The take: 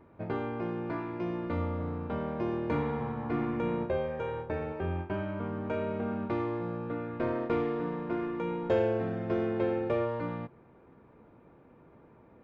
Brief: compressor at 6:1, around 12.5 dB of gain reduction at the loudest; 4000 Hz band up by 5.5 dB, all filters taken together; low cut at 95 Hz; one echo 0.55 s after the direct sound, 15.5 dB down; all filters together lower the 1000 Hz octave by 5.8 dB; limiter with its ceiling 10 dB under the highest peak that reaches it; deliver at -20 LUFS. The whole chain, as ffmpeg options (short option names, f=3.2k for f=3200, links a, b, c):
-af "highpass=95,equalizer=f=1k:t=o:g=-8,equalizer=f=4k:t=o:g=8.5,acompressor=threshold=-38dB:ratio=6,alimiter=level_in=13dB:limit=-24dB:level=0:latency=1,volume=-13dB,aecho=1:1:550:0.168,volume=25dB"